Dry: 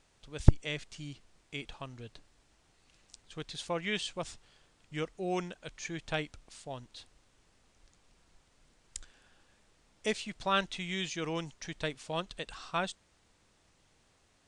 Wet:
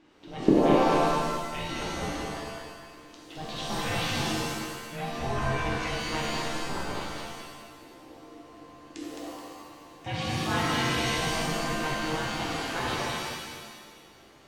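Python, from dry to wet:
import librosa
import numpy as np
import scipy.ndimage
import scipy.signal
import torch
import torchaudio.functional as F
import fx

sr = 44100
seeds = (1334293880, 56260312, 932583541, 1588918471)

p1 = scipy.signal.sosfilt(scipy.signal.butter(2, 3300.0, 'lowpass', fs=sr, output='sos'), x)
p2 = fx.over_compress(p1, sr, threshold_db=-43.0, ratio=-1.0)
p3 = p1 + (p2 * librosa.db_to_amplitude(0.0))
p4 = p3 * np.sin(2.0 * np.pi * 310.0 * np.arange(len(p3)) / sr)
p5 = p4 + fx.echo_feedback(p4, sr, ms=214, feedback_pct=37, wet_db=-3, dry=0)
p6 = fx.rev_shimmer(p5, sr, seeds[0], rt60_s=1.2, semitones=7, shimmer_db=-2, drr_db=-3.5)
y = p6 * librosa.db_to_amplitude(-3.0)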